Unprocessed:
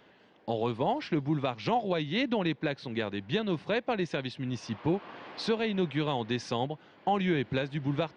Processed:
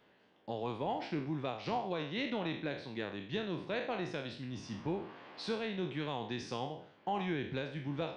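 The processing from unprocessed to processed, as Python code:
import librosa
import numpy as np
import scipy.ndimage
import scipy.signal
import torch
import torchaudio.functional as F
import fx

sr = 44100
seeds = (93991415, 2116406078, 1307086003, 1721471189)

y = fx.spec_trails(x, sr, decay_s=0.54)
y = y * librosa.db_to_amplitude(-9.0)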